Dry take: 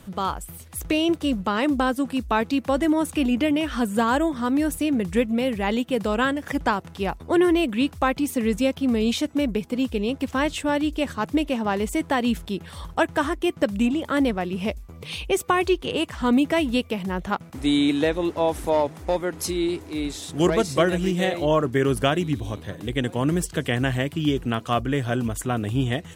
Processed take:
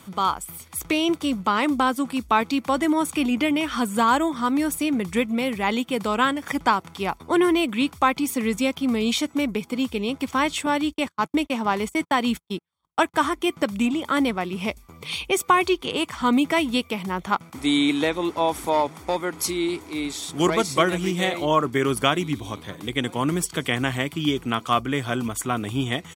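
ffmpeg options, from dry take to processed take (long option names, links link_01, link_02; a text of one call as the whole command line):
ffmpeg -i in.wav -filter_complex "[0:a]asettb=1/sr,asplit=3[link_01][link_02][link_03];[link_01]atrim=end=10.664[link_04];[link_02]atrim=start=10.66:end=13.14,asetpts=PTS-STARTPTS,afade=type=in:duration=0.004:curve=qsin,afade=type=out:start_time=2.476:duration=0.004:curve=qsin,agate=range=-48dB:threshold=-30dB:ratio=16:release=100:detection=peak[link_05];[link_03]atrim=start=13.136[link_06];[link_04][link_05]acrossfade=duration=0.004:curve1=hsin:curve2=qsin[link_07];[link_07][link_06]acrossfade=duration=0.004:curve1=qsin:curve2=hsin,highpass=frequency=370:poles=1,aecho=1:1:0.9:0.4,volume=3dB" out.wav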